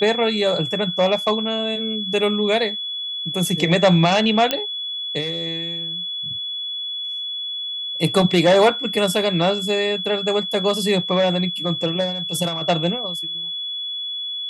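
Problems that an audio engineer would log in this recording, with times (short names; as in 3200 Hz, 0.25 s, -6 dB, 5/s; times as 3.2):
tone 3400 Hz -25 dBFS
4.51 pop -4 dBFS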